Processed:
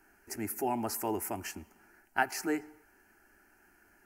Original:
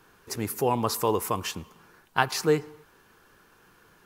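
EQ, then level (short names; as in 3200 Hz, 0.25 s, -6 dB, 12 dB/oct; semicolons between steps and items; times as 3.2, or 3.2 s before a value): fixed phaser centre 730 Hz, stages 8; -3.0 dB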